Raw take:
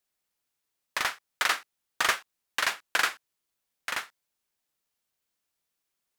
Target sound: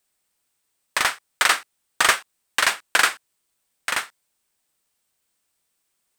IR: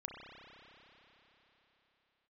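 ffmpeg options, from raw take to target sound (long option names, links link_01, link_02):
-af "equalizer=frequency=8400:width=6.1:gain=9,volume=7.5dB"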